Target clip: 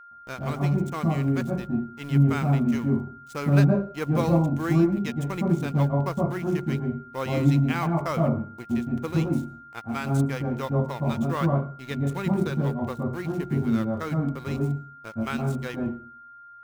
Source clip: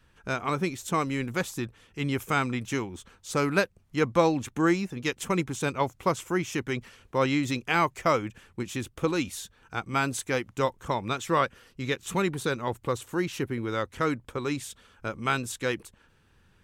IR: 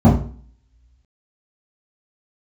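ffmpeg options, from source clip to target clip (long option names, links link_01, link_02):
-filter_complex "[0:a]acrusher=bits=6:mode=log:mix=0:aa=0.000001,aeval=exprs='sgn(val(0))*max(abs(val(0))-0.015,0)':channel_layout=same,aeval=exprs='val(0)+0.01*sin(2*PI*1400*n/s)':channel_layout=same,asplit=2[link_01][link_02];[1:a]atrim=start_sample=2205,adelay=112[link_03];[link_02][link_03]afir=irnorm=-1:irlink=0,volume=-24dB[link_04];[link_01][link_04]amix=inputs=2:normalize=0,volume=-5dB"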